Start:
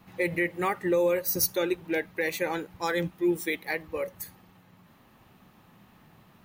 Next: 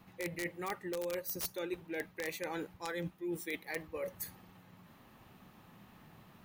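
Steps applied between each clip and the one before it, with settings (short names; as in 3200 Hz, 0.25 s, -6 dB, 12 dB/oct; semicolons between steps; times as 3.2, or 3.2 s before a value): wrapped overs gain 17 dB; reverse; compressor 6:1, threshold -35 dBFS, peak gain reduction 13.5 dB; reverse; gain -1.5 dB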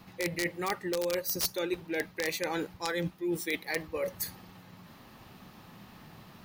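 bell 4800 Hz +6.5 dB 0.74 oct; gain +6.5 dB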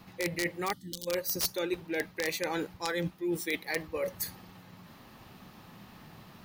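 spectral gain 0.73–1.07, 330–2900 Hz -24 dB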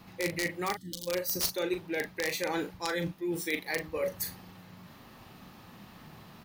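doubler 39 ms -8 dB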